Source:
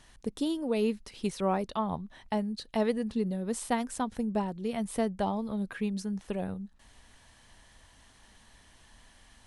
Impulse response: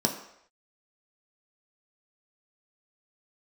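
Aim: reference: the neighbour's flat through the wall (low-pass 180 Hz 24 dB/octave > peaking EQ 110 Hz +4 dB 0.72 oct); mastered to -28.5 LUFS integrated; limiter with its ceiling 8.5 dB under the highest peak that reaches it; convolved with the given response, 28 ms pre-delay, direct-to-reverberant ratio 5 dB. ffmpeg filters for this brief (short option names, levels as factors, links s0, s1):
-filter_complex "[0:a]alimiter=limit=0.0668:level=0:latency=1,asplit=2[s0][s1];[1:a]atrim=start_sample=2205,adelay=28[s2];[s1][s2]afir=irnorm=-1:irlink=0,volume=0.188[s3];[s0][s3]amix=inputs=2:normalize=0,lowpass=f=180:w=0.5412,lowpass=f=180:w=1.3066,equalizer=f=110:t=o:w=0.72:g=4,volume=2.37"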